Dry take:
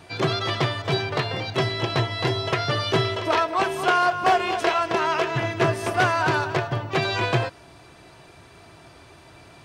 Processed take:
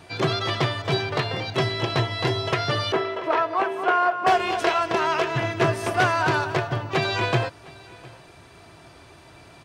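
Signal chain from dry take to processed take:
0:02.92–0:04.27: three-way crossover with the lows and the highs turned down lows −24 dB, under 240 Hz, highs −16 dB, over 2,400 Hz
on a send: single-tap delay 708 ms −23 dB

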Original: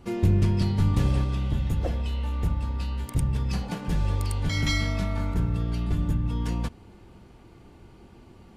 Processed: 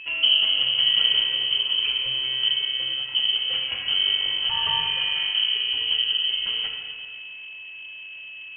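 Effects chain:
four-comb reverb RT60 2 s, combs from 25 ms, DRR 1 dB
steady tone 500 Hz −37 dBFS
voice inversion scrambler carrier 3,100 Hz

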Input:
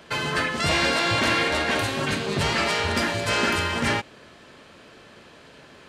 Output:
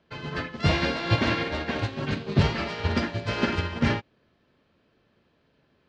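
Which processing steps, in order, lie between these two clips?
low-pass filter 5,400 Hz 24 dB per octave
low-shelf EQ 380 Hz +10 dB
expander for the loud parts 2.5 to 1, over −29 dBFS

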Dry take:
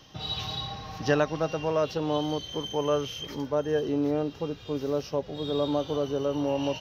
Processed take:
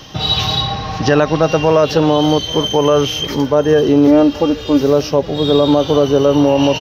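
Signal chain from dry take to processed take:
0:00.62–0:01.43: high-frequency loss of the air 52 metres
0:04.07–0:04.81: comb filter 3.5 ms, depth 67%
single-tap delay 823 ms −22.5 dB
boost into a limiter +18 dB
level −1 dB

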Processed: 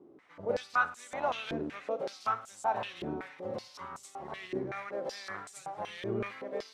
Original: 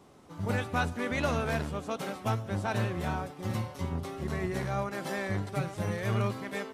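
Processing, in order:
delay with a high-pass on its return 209 ms, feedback 67%, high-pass 4,000 Hz, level −6.5 dB
on a send at −15 dB: convolution reverb RT60 0.80 s, pre-delay 34 ms
on the sum: band-pass on a step sequencer 5.3 Hz 340–7,500 Hz
level +8 dB

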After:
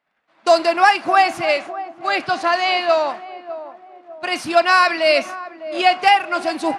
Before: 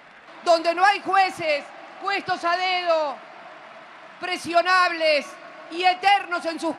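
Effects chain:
downward expander −30 dBFS
feedback echo with a band-pass in the loop 603 ms, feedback 48%, band-pass 430 Hz, level −12 dB
level +4.5 dB

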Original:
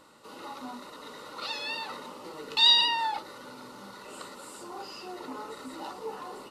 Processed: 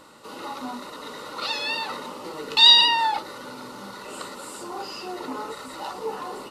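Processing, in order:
0:05.52–0:05.94: parametric band 290 Hz −10 dB 0.79 octaves
level +7 dB

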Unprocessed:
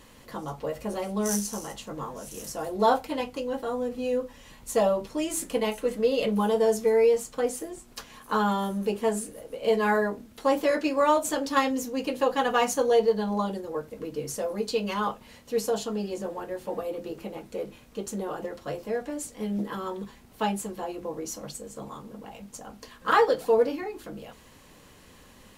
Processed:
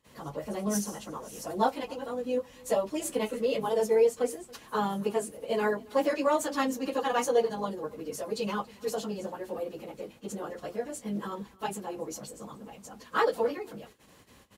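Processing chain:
noise gate with hold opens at −42 dBFS
high-pass filter 55 Hz 12 dB per octave
time stretch by phase vocoder 0.57×
single-tap delay 278 ms −23.5 dB

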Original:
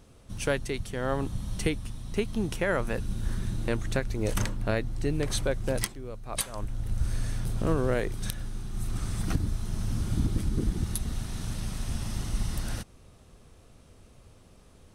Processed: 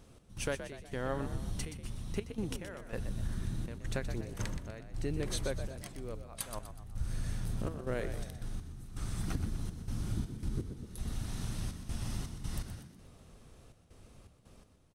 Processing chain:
downward compressor 2 to 1, threshold −32 dBFS, peak gain reduction 7 dB
gate pattern "x.x..xxxx.x" 82 BPM −12 dB
echo with shifted repeats 123 ms, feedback 44%, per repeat +51 Hz, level −10 dB
level −2.5 dB

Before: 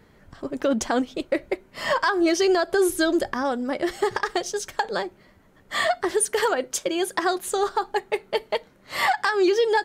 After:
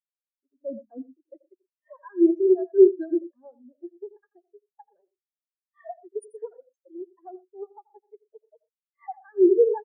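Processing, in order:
loudspeakers that aren't time-aligned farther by 29 metres −6 dB, 42 metres −9 dB
harmonic generator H 2 −9 dB, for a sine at −8 dBFS
every bin expanded away from the loudest bin 4 to 1

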